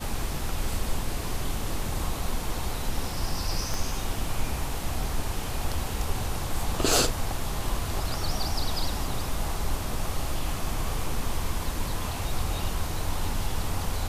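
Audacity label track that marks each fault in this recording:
3.740000	3.740000	pop

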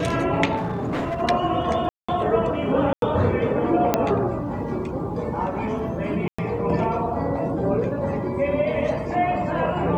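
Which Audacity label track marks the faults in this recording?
0.560000	1.220000	clipped -22 dBFS
1.890000	2.080000	dropout 195 ms
2.930000	3.020000	dropout 92 ms
3.940000	3.940000	pop -4 dBFS
6.280000	6.380000	dropout 105 ms

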